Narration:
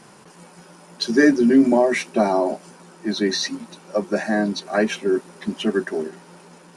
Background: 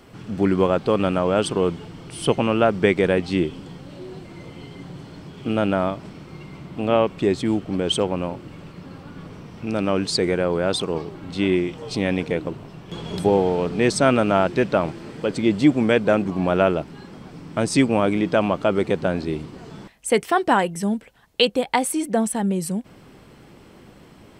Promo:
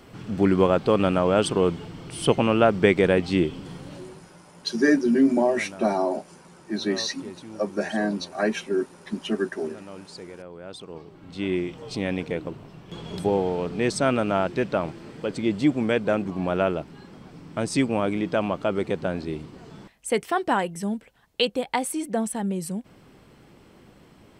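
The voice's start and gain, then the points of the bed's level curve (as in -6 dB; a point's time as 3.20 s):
3.65 s, -4.5 dB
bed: 3.94 s -0.5 dB
4.44 s -20 dB
10.53 s -20 dB
11.60 s -5 dB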